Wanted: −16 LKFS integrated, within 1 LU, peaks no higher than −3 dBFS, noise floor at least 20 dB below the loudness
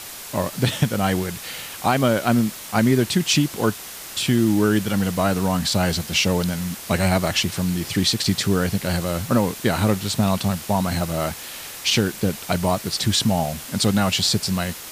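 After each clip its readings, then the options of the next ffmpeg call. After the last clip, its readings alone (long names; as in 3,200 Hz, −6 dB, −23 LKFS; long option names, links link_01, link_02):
background noise floor −36 dBFS; target noise floor −42 dBFS; integrated loudness −21.5 LKFS; sample peak −7.0 dBFS; target loudness −16.0 LKFS
→ -af "afftdn=noise_reduction=6:noise_floor=-36"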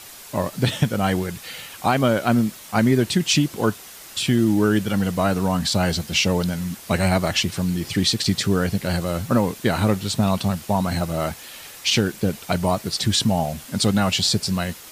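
background noise floor −41 dBFS; target noise floor −42 dBFS
→ -af "afftdn=noise_reduction=6:noise_floor=-41"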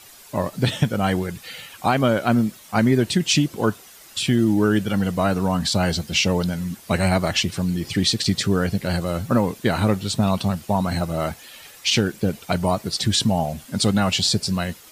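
background noise floor −46 dBFS; integrated loudness −21.5 LKFS; sample peak −7.0 dBFS; target loudness −16.0 LKFS
→ -af "volume=5.5dB,alimiter=limit=-3dB:level=0:latency=1"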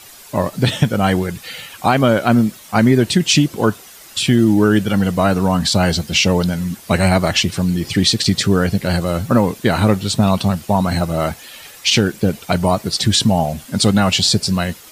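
integrated loudness −16.0 LKFS; sample peak −3.0 dBFS; background noise floor −40 dBFS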